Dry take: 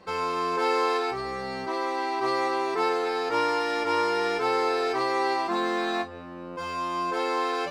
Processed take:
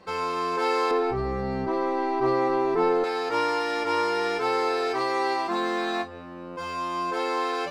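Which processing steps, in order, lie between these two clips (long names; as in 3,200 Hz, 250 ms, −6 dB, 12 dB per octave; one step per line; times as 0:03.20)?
0:00.91–0:03.04: spectral tilt −4 dB per octave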